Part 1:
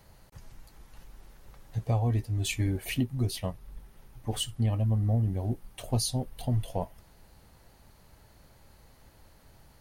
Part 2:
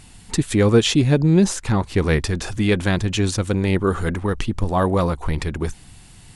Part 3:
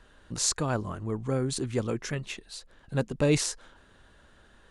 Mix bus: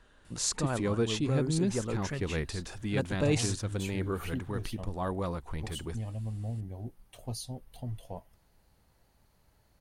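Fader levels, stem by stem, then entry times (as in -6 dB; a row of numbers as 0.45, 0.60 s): -10.0, -14.5, -4.0 dB; 1.35, 0.25, 0.00 s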